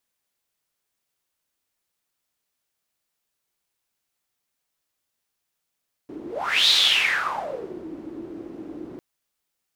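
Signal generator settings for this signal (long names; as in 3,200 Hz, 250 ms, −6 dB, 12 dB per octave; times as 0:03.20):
pass-by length 2.90 s, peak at 0:00.60, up 0.47 s, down 1.20 s, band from 320 Hz, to 3,800 Hz, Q 7.5, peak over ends 19.5 dB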